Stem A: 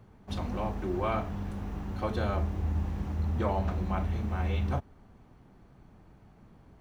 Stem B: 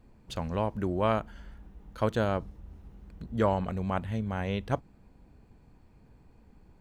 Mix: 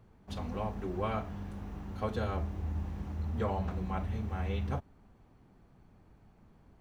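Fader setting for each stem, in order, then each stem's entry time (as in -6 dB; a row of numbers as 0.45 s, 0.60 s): -5.5 dB, -11.0 dB; 0.00 s, 0.00 s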